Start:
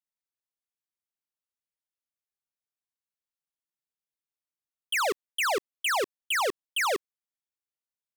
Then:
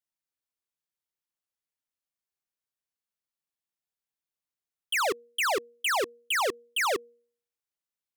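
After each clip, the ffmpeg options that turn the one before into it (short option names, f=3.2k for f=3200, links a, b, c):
-af "bandreject=f=237.2:t=h:w=4,bandreject=f=474.4:t=h:w=4"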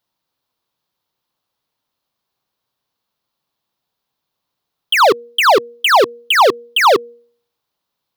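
-filter_complex "[0:a]equalizer=f=125:t=o:w=1:g=8,equalizer=f=250:t=o:w=1:g=4,equalizer=f=500:t=o:w=1:g=4,equalizer=f=1k:t=o:w=1:g=9,equalizer=f=2k:t=o:w=1:g=-4,equalizer=f=4k:t=o:w=1:g=8,equalizer=f=8k:t=o:w=1:g=-9,asplit=2[a][b];[b]alimiter=limit=-22dB:level=0:latency=1:release=155,volume=2dB[c];[a][c]amix=inputs=2:normalize=0,volume=6.5dB"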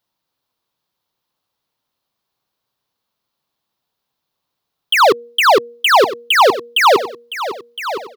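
-af "aecho=1:1:1013|2026|3039:0.237|0.0783|0.0258"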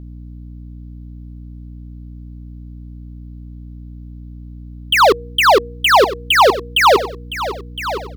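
-af "aeval=exprs='val(0)+0.0251*(sin(2*PI*60*n/s)+sin(2*PI*2*60*n/s)/2+sin(2*PI*3*60*n/s)/3+sin(2*PI*4*60*n/s)/4+sin(2*PI*5*60*n/s)/5)':c=same"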